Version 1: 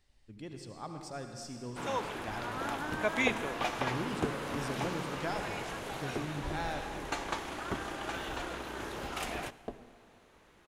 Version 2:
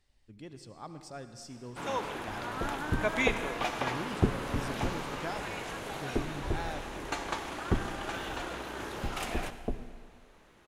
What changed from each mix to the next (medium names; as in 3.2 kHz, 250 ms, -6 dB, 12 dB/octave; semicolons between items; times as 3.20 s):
speech: send -6.5 dB; first sound: send +8.5 dB; second sound: add tilt EQ -4 dB/octave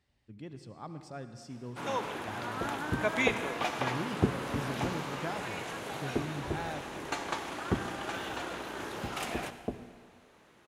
speech: add tone controls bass +5 dB, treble -7 dB; master: add high-pass 95 Hz 12 dB/octave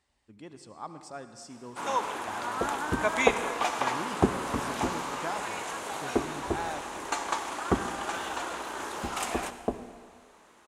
second sound +6.0 dB; master: add graphic EQ 125/1000/8000 Hz -10/+7/+10 dB